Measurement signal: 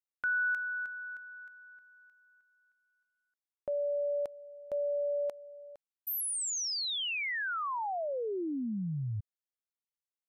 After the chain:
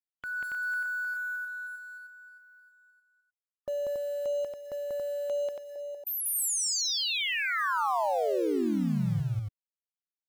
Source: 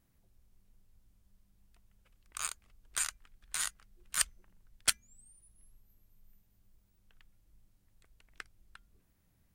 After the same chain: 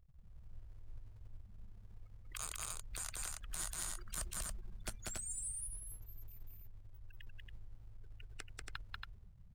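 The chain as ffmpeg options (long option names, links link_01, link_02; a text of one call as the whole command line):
ffmpeg -i in.wav -filter_complex "[0:a]afftfilt=real='re*gte(hypot(re,im),0.00158)':imag='im*gte(hypot(re,im),0.00158)':win_size=1024:overlap=0.75,bass=frequency=250:gain=3,treble=frequency=4000:gain=9,acrossover=split=810[link_01][link_02];[link_02]acompressor=threshold=-42dB:ratio=5:attack=0.93:release=77:knee=1:detection=peak[link_03];[link_01][link_03]amix=inputs=2:normalize=0,alimiter=level_in=12.5dB:limit=-24dB:level=0:latency=1:release=235,volume=-12.5dB,asplit=2[link_04][link_05];[link_05]acrusher=bits=3:mode=log:mix=0:aa=0.000001,volume=-7dB[link_06];[link_04][link_06]amix=inputs=2:normalize=0,aecho=1:1:189.5|279.9:0.891|0.708,volume=5dB" out.wav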